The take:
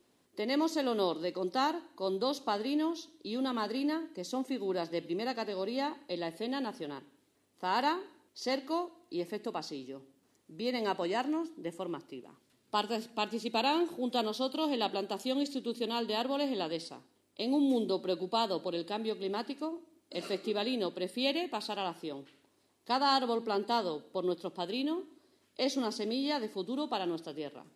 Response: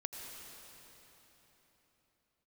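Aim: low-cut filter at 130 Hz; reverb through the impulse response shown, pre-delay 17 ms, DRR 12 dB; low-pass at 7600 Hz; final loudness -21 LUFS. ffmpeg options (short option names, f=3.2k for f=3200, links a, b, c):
-filter_complex "[0:a]highpass=130,lowpass=7.6k,asplit=2[a][b];[1:a]atrim=start_sample=2205,adelay=17[c];[b][c]afir=irnorm=-1:irlink=0,volume=-11.5dB[d];[a][d]amix=inputs=2:normalize=0,volume=13dB"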